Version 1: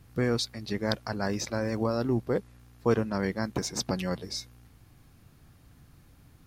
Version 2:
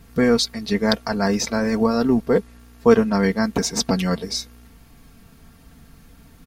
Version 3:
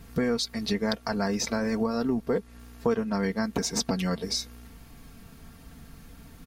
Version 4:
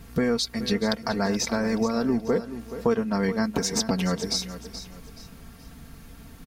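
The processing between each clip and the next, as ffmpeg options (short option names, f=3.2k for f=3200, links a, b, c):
-af "aecho=1:1:4.4:0.67,volume=8dB"
-af "acompressor=threshold=-26dB:ratio=3"
-af "aecho=1:1:427|854|1281:0.237|0.0783|0.0258,volume=2.5dB"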